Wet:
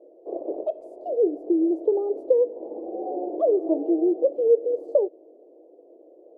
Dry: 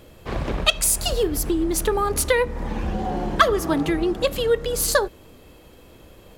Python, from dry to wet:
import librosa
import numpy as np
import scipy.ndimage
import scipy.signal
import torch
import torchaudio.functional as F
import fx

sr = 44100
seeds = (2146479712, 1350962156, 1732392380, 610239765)

y = scipy.signal.sosfilt(scipy.signal.ellip(3, 1.0, 50, [320.0, 680.0], 'bandpass', fs=sr, output='sos'), x)
y = y * librosa.db_to_amplitude(2.0)